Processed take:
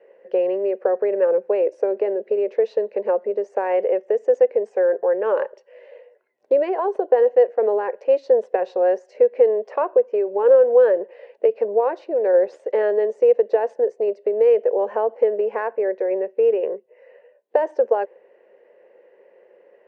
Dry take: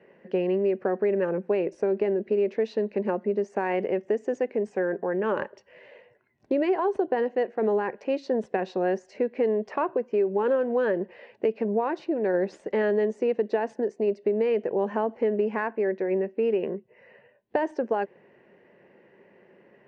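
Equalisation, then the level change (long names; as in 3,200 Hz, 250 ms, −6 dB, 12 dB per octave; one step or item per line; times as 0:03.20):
dynamic equaliser 1,000 Hz, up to +4 dB, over −36 dBFS, Q 0.74
high-pass with resonance 500 Hz, resonance Q 4.9
−3.5 dB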